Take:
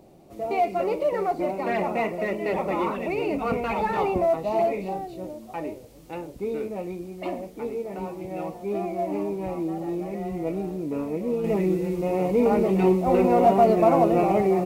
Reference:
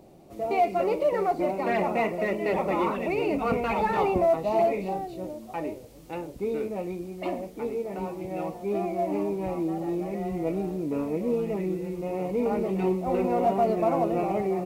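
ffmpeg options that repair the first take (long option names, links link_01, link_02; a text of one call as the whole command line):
ffmpeg -i in.wav -af "asetnsamples=nb_out_samples=441:pad=0,asendcmd='11.44 volume volume -6dB',volume=0dB" out.wav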